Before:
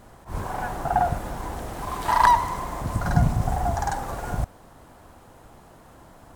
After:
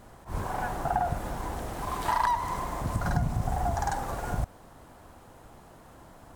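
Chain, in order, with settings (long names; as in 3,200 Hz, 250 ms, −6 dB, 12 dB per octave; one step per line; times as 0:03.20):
downward compressor 5 to 1, threshold −21 dBFS, peak gain reduction 8.5 dB
level −2 dB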